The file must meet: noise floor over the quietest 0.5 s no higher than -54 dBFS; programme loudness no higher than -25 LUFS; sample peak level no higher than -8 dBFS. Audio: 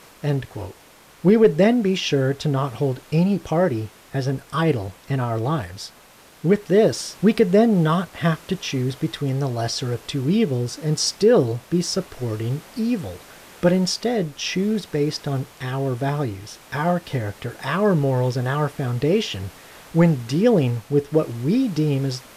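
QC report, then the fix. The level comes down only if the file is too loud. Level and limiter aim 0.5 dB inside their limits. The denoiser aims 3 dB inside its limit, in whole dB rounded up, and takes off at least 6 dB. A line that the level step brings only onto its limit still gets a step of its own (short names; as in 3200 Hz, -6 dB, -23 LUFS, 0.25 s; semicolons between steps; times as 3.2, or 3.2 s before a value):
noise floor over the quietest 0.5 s -49 dBFS: fail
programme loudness -21.5 LUFS: fail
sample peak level -5.5 dBFS: fail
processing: denoiser 6 dB, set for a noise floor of -49 dBFS; gain -4 dB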